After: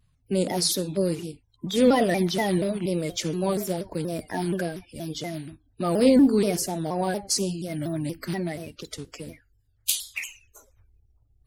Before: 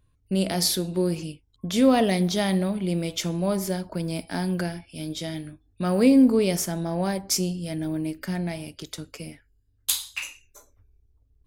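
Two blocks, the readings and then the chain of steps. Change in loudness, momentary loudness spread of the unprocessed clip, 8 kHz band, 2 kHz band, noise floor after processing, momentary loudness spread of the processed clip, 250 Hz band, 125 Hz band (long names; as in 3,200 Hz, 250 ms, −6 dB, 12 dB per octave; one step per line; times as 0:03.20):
−0.5 dB, 18 LU, 0.0 dB, 0.0 dB, −66 dBFS, 18 LU, −1.5 dB, −2.0 dB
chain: spectral magnitudes quantised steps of 30 dB
pitch modulation by a square or saw wave saw down 4.2 Hz, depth 160 cents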